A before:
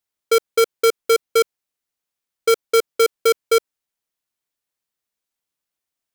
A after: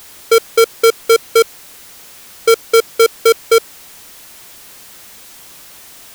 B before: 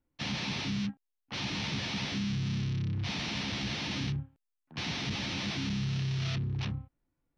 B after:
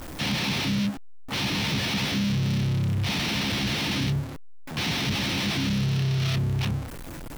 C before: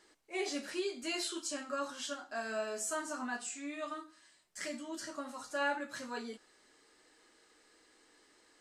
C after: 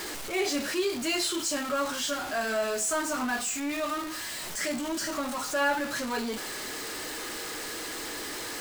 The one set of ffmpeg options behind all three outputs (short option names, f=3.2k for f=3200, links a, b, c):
-af "aeval=exprs='val(0)+0.5*0.015*sgn(val(0))':c=same,volume=5.5dB"